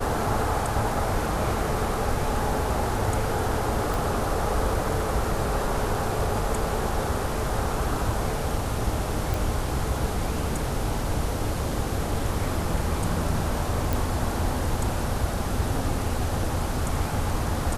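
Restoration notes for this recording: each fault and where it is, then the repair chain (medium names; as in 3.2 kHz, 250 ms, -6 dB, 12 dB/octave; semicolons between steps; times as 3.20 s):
3.94 s: pop
9.34 s: pop
13.93 s: pop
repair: de-click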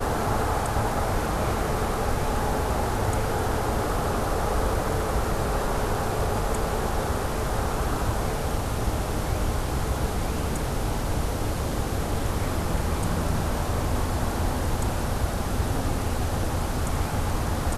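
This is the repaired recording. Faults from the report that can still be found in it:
nothing left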